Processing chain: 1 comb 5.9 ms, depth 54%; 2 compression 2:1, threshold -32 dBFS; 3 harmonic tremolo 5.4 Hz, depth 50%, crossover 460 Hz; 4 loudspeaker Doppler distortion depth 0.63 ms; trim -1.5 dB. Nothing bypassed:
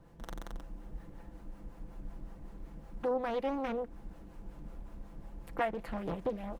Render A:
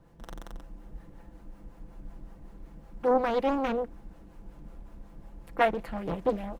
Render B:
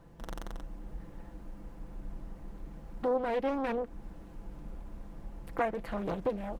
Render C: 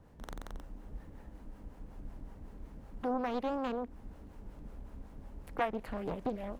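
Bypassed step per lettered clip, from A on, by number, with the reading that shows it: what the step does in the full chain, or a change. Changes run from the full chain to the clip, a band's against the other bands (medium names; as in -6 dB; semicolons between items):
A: 2, crest factor change +3.0 dB; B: 3, 4 kHz band -1.5 dB; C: 1, 500 Hz band -2.5 dB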